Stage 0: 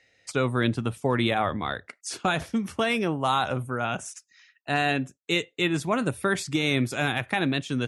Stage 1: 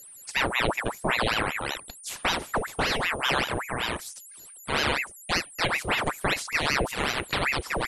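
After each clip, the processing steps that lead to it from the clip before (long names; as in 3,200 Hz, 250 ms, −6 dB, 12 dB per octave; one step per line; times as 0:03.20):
steady tone 9,300 Hz −43 dBFS
ring modulator whose carrier an LFO sweeps 1,300 Hz, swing 85%, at 5.2 Hz
level +1.5 dB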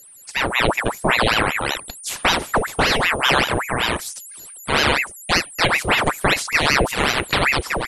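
automatic gain control gain up to 8 dB
level +1.5 dB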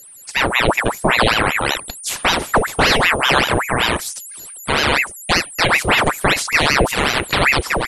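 boost into a limiter +5 dB
level −1 dB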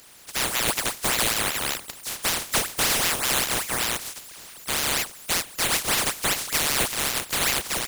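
compressing power law on the bin magnitudes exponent 0.15
gain into a clipping stage and back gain 6 dB
level −7.5 dB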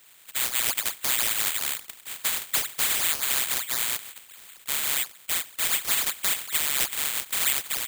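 tilt shelving filter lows −7 dB, about 1,300 Hz
bad sample-rate conversion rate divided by 8×, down filtered, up zero stuff
level −6.5 dB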